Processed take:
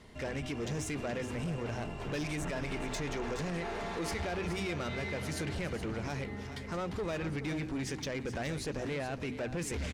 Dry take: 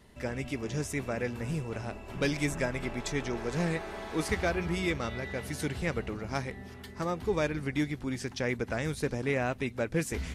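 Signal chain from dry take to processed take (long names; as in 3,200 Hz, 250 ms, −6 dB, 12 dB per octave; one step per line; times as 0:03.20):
low-pass filter 7,900 Hz 12 dB per octave
mains-hum notches 60/120/180/240/300 Hz
brickwall limiter −27 dBFS, peak gain reduction 9.5 dB
soft clipping −34.5 dBFS, distortion −13 dB
single-tap delay 439 ms −11.5 dB
wrong playback speed 24 fps film run at 25 fps
level +3.5 dB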